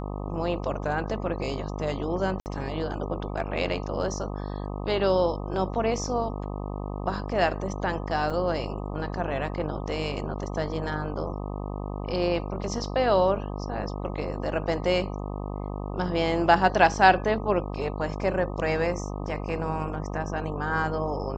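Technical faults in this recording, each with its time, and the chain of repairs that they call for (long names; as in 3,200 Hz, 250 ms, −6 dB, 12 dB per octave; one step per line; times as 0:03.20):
mains buzz 50 Hz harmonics 25 −33 dBFS
0:02.40–0:02.46: drop-out 59 ms
0:08.30: drop-out 4.9 ms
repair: hum removal 50 Hz, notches 25
repair the gap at 0:02.40, 59 ms
repair the gap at 0:08.30, 4.9 ms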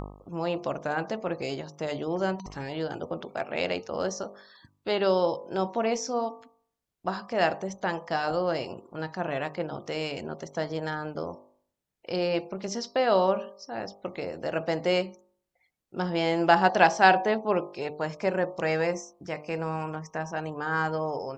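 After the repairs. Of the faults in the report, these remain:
none of them is left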